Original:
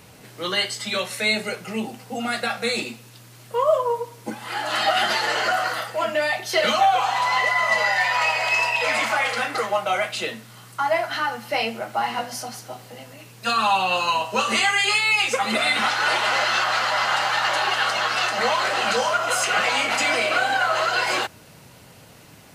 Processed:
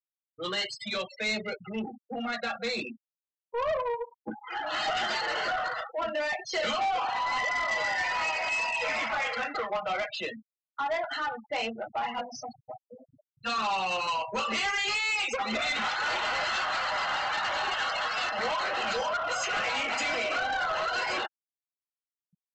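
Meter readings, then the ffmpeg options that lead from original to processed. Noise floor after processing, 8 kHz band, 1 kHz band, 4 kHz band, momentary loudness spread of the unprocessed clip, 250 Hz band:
under -85 dBFS, -11.0 dB, -8.0 dB, -8.5 dB, 11 LU, -7.0 dB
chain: -af "afftfilt=real='re*gte(hypot(re,im),0.0562)':imag='im*gte(hypot(re,im),0.0562)':win_size=1024:overlap=0.75,aresample=16000,asoftclip=type=tanh:threshold=0.0944,aresample=44100,volume=0.596"

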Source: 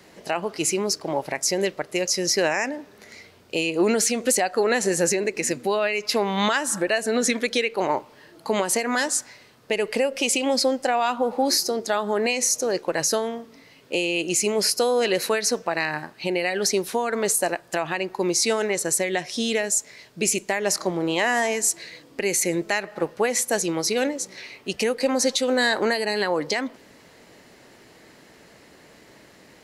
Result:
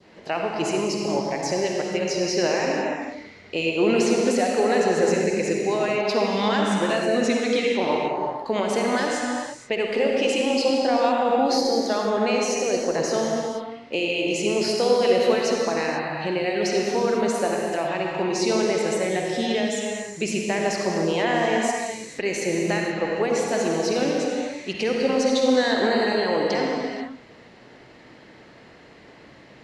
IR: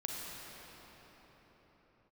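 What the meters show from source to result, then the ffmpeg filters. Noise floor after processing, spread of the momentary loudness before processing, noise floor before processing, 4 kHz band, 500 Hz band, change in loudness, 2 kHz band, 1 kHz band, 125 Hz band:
-48 dBFS, 7 LU, -52 dBFS, -2.0 dB, +2.5 dB, 0.0 dB, -1.5 dB, +2.0 dB, +3.5 dB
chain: -filter_complex "[0:a]lowpass=4100[s0];[1:a]atrim=start_sample=2205,afade=t=out:st=0.42:d=0.01,atrim=end_sample=18963,asetrate=33075,aresample=44100[s1];[s0][s1]afir=irnorm=-1:irlink=0,adynamicequalizer=threshold=0.0141:dfrequency=1800:dqfactor=0.93:tfrequency=1800:tqfactor=0.93:attack=5:release=100:ratio=0.375:range=2.5:mode=cutabove:tftype=bell"

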